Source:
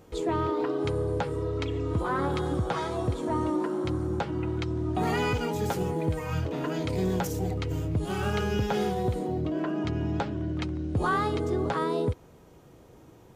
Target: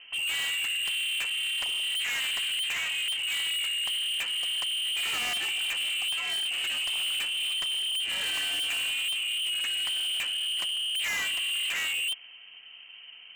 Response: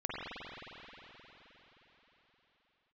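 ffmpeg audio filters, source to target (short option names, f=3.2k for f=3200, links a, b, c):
-af "acrusher=bits=7:mode=log:mix=0:aa=0.000001,lowpass=f=2.7k:t=q:w=0.5098,lowpass=f=2.7k:t=q:w=0.6013,lowpass=f=2.7k:t=q:w=0.9,lowpass=f=2.7k:t=q:w=2.563,afreqshift=-3200,volume=33dB,asoftclip=hard,volume=-33dB,volume=4.5dB"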